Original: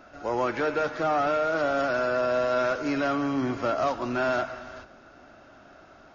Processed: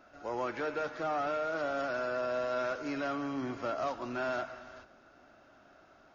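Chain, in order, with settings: low shelf 190 Hz -3.5 dB; gain -8 dB

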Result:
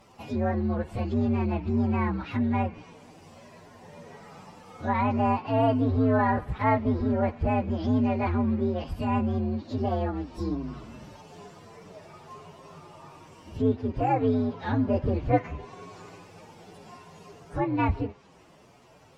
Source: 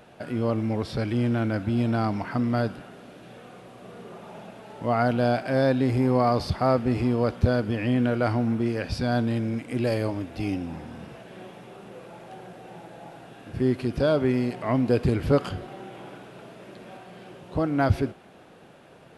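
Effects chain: inharmonic rescaling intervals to 130%; treble ducked by the level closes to 2300 Hz, closed at -24.5 dBFS

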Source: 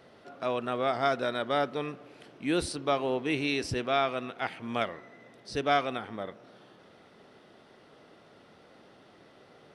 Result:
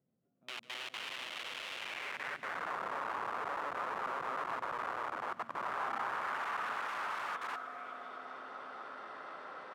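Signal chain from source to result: regenerating reverse delay 0.124 s, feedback 81%, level -0.5 dB; low-pass sweep 160 Hz -> 8500 Hz, 5.69–7.84; in parallel at +2 dB: negative-ratio compressor -34 dBFS, ratio -0.5; on the sum: HPF 43 Hz 6 dB/oct; resonator 260 Hz, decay 0.22 s, harmonics all, mix 50%; echo 0.647 s -7.5 dB; level quantiser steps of 12 dB; wrapped overs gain 34.5 dB; dynamic EQ 4600 Hz, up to -4 dB, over -55 dBFS, Q 0.77; band-pass sweep 3000 Hz -> 1200 Hz, 1.75–2.78; on a send: thinning echo 0.146 s, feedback 82%, high-pass 700 Hz, level -18.5 dB; on the sum: gain +9.5 dB

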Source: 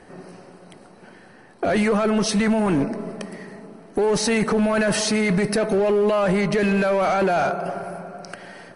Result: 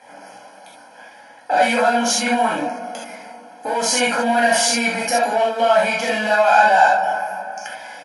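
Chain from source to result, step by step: HPF 400 Hz 12 dB/oct; comb 1.4 ms, depth 92%; non-linear reverb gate 0.11 s flat, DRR -5.5 dB; speed mistake 44.1 kHz file played as 48 kHz; gain -2.5 dB

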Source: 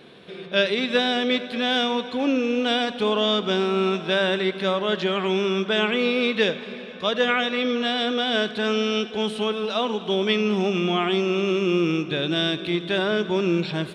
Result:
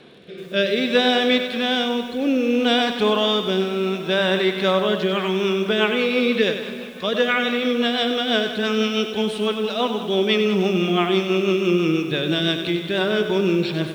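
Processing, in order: rotary speaker horn 0.6 Hz, later 6 Hz, at 4.74; lo-fi delay 96 ms, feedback 55%, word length 8-bit, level -9 dB; gain +4 dB

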